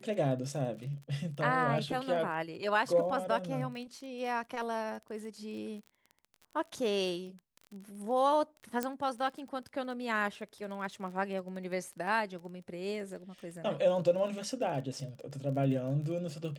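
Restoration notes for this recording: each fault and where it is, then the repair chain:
crackle 26/s -41 dBFS
8.83 pop -17 dBFS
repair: de-click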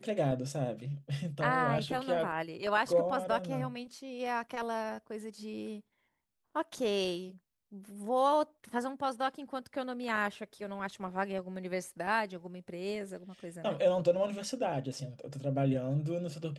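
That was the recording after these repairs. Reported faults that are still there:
none

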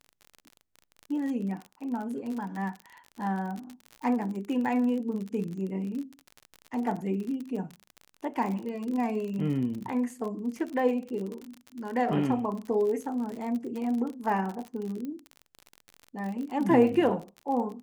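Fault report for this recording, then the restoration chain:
crackle 47/s -34 dBFS
15.05 pop -26 dBFS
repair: de-click

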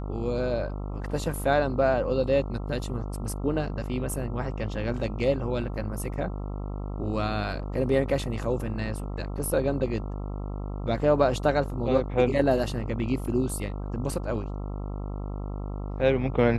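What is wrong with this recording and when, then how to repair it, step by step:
buzz 50 Hz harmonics 27 -33 dBFS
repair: de-hum 50 Hz, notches 27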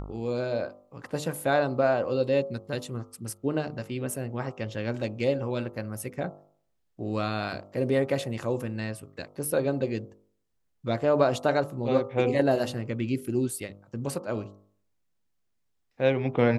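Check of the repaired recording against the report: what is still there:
none

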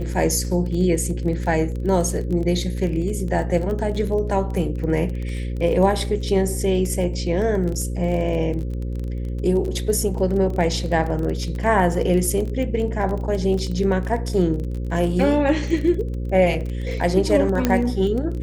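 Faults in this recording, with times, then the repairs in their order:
buzz 60 Hz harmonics 9 -26 dBFS
crackle 21/s -27 dBFS
17.65 pop -5 dBFS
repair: de-click; de-hum 60 Hz, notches 9

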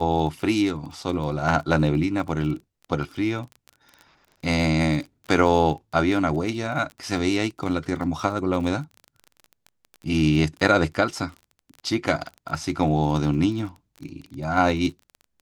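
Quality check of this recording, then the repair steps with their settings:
crackle 22/s -32 dBFS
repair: de-click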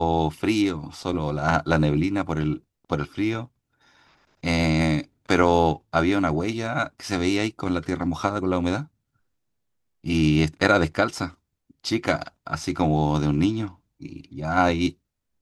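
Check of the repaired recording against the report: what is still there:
none

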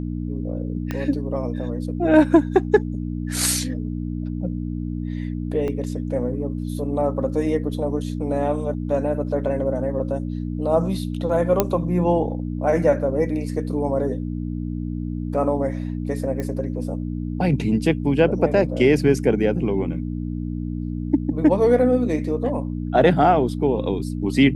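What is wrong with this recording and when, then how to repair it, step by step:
hum 60 Hz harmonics 5 -27 dBFS
0.91 pop -13 dBFS
5.68 gap 2.5 ms
11.6 pop -3 dBFS
16.4 pop -16 dBFS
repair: de-click; de-hum 60 Hz, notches 5; interpolate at 5.68, 2.5 ms

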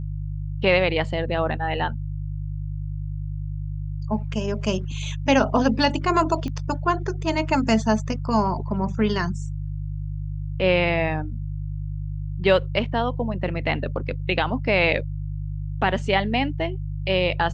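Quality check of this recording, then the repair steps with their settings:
hum 50 Hz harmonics 3 -29 dBFS
6.48 pop -19 dBFS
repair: de-click; de-hum 50 Hz, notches 3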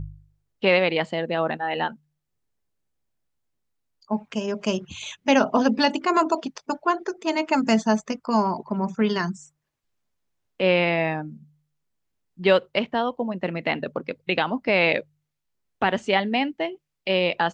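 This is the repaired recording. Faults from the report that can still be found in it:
none

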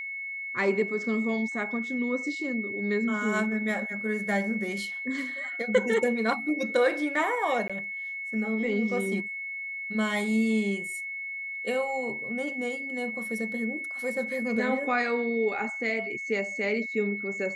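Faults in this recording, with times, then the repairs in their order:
tone 2200 Hz -33 dBFS
7.68–7.7 gap 16 ms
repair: notch 2200 Hz, Q 30; interpolate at 7.68, 16 ms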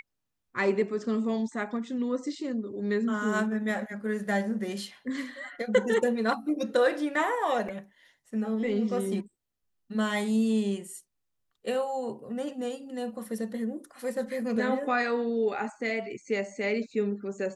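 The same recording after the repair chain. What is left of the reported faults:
none

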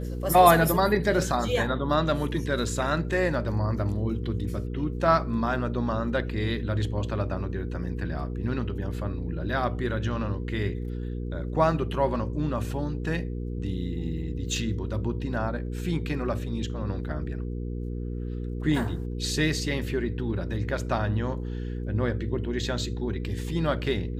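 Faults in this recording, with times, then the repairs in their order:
hum 60 Hz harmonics 8 -32 dBFS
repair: de-hum 60 Hz, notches 8

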